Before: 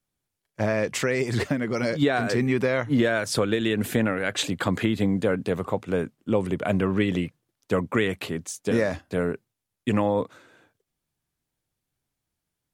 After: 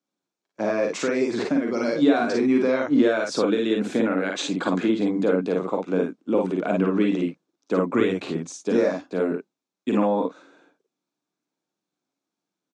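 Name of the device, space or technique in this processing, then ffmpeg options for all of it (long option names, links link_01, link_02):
television speaker: -filter_complex "[0:a]asettb=1/sr,asplit=3[link_01][link_02][link_03];[link_01]atrim=end=7.884[link_04];[link_02]atrim=start=7.88:end=8.53,asetpts=PTS-STARTPTS,afade=type=in:duration=0.004:curve=qsin,afade=type=out:start_time=0.646:duration=0.004:curve=qsin,equalizer=frequency=99:width=1.1:gain=11[link_05];[link_03]atrim=start=8.526[link_06];[link_04][link_05]acrossfade=duration=0.004:curve1=hsin:curve2=qsin[link_07];[link_07][link_06]acrossfade=duration=0.004:curve1=qsin:curve2=hsin,highpass=frequency=200:width=0.5412,highpass=frequency=200:width=1.3066,equalizer=frequency=300:width_type=q:width=4:gain=5,equalizer=frequency=1900:width_type=q:width=4:gain=-9,equalizer=frequency=3000:width_type=q:width=4:gain=-7,equalizer=frequency=4800:width_type=q:width=4:gain=-4,lowpass=frequency=6500:width=0.5412,lowpass=frequency=6500:width=1.3066,aecho=1:1:43|54:0.501|0.668"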